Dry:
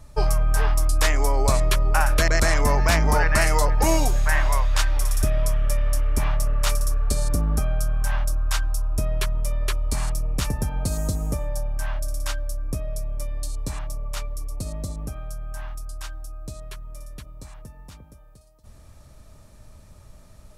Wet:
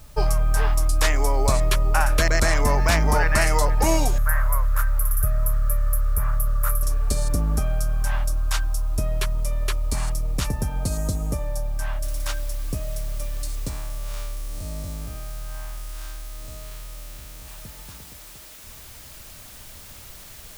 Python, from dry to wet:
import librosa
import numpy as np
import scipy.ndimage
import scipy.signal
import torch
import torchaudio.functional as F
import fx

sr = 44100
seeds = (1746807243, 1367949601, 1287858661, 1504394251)

y = fx.curve_eq(x, sr, hz=(120.0, 190.0, 300.0, 510.0, 810.0, 1300.0, 3100.0, 4600.0, 8200.0, 12000.0), db=(0, -11, -23, -3, -12, 4, -22, -22, -11, 10), at=(4.18, 6.83))
y = fx.noise_floor_step(y, sr, seeds[0], at_s=12.03, before_db=-55, after_db=-44, tilt_db=0.0)
y = fx.spec_blur(y, sr, span_ms=162.0, at=(13.69, 17.46), fade=0.02)